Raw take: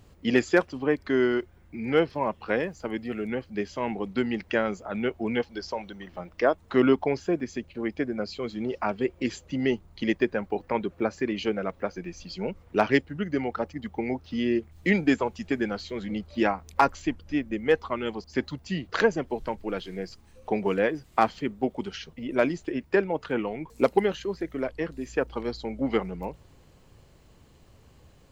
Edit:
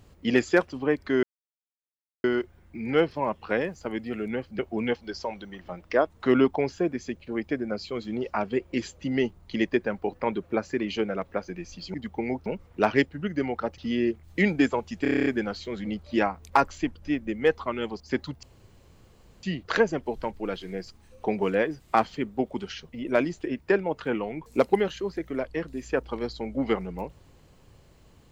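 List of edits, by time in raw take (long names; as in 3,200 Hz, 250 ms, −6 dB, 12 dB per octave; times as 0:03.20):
0:01.23: splice in silence 1.01 s
0:03.58–0:05.07: remove
0:13.74–0:14.26: move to 0:12.42
0:15.50: stutter 0.03 s, 9 plays
0:18.67: splice in room tone 1.00 s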